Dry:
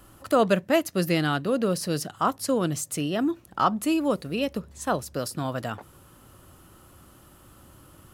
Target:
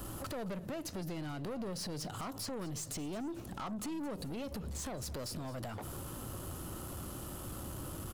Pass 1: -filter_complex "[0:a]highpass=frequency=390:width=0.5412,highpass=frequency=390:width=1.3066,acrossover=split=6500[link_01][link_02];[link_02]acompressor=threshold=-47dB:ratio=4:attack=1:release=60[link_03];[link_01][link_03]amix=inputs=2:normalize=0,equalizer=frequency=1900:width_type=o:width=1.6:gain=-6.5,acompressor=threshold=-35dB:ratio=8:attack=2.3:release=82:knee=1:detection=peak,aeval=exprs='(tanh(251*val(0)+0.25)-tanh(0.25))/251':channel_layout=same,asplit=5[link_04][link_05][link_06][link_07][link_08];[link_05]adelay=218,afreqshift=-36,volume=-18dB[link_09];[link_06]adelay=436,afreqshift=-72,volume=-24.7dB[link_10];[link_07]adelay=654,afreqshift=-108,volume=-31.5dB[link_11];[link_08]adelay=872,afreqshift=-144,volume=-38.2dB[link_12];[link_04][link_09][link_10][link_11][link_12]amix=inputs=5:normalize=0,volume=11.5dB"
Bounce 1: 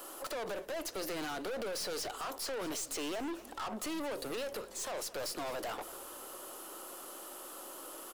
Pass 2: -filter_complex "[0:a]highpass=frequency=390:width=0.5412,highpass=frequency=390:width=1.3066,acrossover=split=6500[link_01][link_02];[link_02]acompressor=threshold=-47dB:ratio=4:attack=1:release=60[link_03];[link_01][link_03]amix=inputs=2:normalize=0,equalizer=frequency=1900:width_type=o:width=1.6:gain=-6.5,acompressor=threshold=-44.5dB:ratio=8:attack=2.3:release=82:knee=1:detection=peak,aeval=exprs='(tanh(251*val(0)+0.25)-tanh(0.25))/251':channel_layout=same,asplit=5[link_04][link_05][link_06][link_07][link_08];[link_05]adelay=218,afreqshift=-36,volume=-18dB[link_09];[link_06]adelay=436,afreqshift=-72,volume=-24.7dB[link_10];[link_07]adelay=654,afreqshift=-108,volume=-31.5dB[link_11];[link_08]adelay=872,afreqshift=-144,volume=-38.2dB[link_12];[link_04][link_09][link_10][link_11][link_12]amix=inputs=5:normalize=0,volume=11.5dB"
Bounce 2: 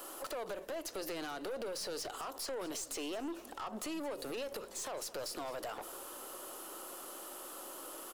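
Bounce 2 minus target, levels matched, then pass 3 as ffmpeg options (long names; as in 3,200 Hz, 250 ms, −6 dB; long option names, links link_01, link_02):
500 Hz band +3.0 dB
-filter_complex "[0:a]acrossover=split=6500[link_01][link_02];[link_02]acompressor=threshold=-47dB:ratio=4:attack=1:release=60[link_03];[link_01][link_03]amix=inputs=2:normalize=0,equalizer=frequency=1900:width_type=o:width=1.6:gain=-6.5,acompressor=threshold=-44.5dB:ratio=8:attack=2.3:release=82:knee=1:detection=peak,aeval=exprs='(tanh(251*val(0)+0.25)-tanh(0.25))/251':channel_layout=same,asplit=5[link_04][link_05][link_06][link_07][link_08];[link_05]adelay=218,afreqshift=-36,volume=-18dB[link_09];[link_06]adelay=436,afreqshift=-72,volume=-24.7dB[link_10];[link_07]adelay=654,afreqshift=-108,volume=-31.5dB[link_11];[link_08]adelay=872,afreqshift=-144,volume=-38.2dB[link_12];[link_04][link_09][link_10][link_11][link_12]amix=inputs=5:normalize=0,volume=11.5dB"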